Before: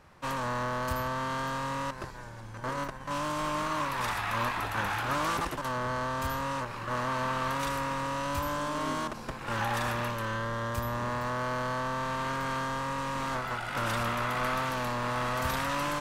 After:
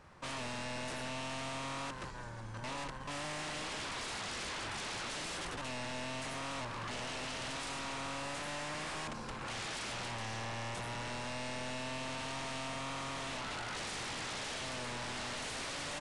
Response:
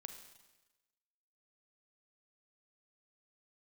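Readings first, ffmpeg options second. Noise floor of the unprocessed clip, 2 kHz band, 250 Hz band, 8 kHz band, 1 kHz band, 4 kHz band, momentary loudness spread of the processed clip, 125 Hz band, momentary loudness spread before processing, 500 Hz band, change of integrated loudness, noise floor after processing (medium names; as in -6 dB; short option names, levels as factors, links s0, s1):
-43 dBFS, -7.5 dB, -9.0 dB, -0.5 dB, -11.5 dB, -1.0 dB, 2 LU, -10.0 dB, 5 LU, -9.5 dB, -8.0 dB, -45 dBFS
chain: -af "aeval=exprs='0.0188*(abs(mod(val(0)/0.0188+3,4)-2)-1)':c=same,aresample=22050,aresample=44100,volume=0.841"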